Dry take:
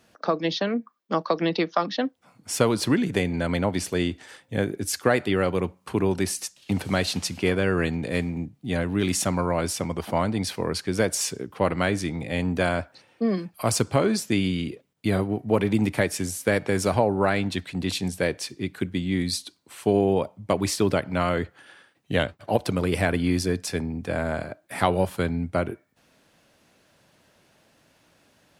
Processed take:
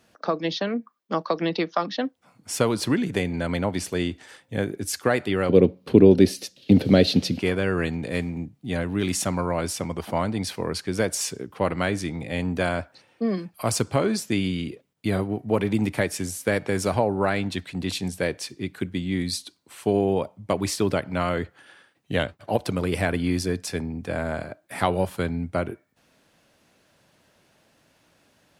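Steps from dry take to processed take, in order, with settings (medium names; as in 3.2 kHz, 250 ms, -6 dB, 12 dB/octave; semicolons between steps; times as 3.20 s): 5.49–7.39 s: ten-band graphic EQ 125 Hz +7 dB, 250 Hz +10 dB, 500 Hz +12 dB, 1 kHz -9 dB, 4 kHz +8 dB, 8 kHz -10 dB; trim -1 dB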